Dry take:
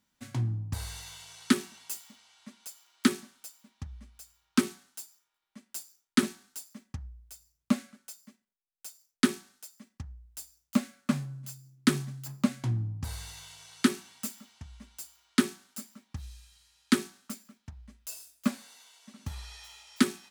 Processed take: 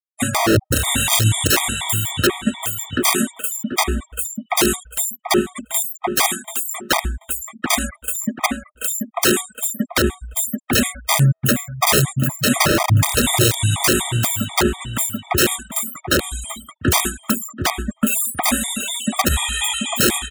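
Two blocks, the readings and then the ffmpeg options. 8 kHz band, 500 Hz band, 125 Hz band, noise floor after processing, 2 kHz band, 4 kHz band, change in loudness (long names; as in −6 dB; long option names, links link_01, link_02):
+21.5 dB, +18.5 dB, +15.5 dB, −56 dBFS, +17.5 dB, +18.5 dB, +13.5 dB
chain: -filter_complex "[0:a]asuperstop=centerf=5100:order=20:qfactor=1.8,aeval=exprs='0.355*sin(PI/2*3.16*val(0)/0.355)':channel_layout=same,acrossover=split=3800[link_01][link_02];[link_02]acompressor=threshold=-36dB:ratio=4:attack=1:release=60[link_03];[link_01][link_03]amix=inputs=2:normalize=0,highshelf=frequency=4100:gain=9,afftfilt=real='re*gte(hypot(re,im),0.0126)':imag='im*gte(hypot(re,im),0.0126)':win_size=1024:overlap=0.75,asplit=2[link_04][link_05];[link_05]adelay=734,lowpass=frequency=1800:poles=1,volume=-4.5dB,asplit=2[link_06][link_07];[link_07]adelay=734,lowpass=frequency=1800:poles=1,volume=0.24,asplit=2[link_08][link_09];[link_09]adelay=734,lowpass=frequency=1800:poles=1,volume=0.24[link_10];[link_06][link_08][link_10]amix=inputs=3:normalize=0[link_11];[link_04][link_11]amix=inputs=2:normalize=0,acompressor=mode=upward:threshold=-28dB:ratio=2.5,aeval=exprs='(mod(5.96*val(0)+1,2)-1)/5.96':channel_layout=same,highpass=frequency=120:poles=1,alimiter=level_in=19.5dB:limit=-1dB:release=50:level=0:latency=1,afftfilt=real='re*gt(sin(2*PI*4.1*pts/sr)*(1-2*mod(floor(b*sr/1024/630),2)),0)':imag='im*gt(sin(2*PI*4.1*pts/sr)*(1-2*mod(floor(b*sr/1024/630),2)),0)':win_size=1024:overlap=0.75,volume=-4dB"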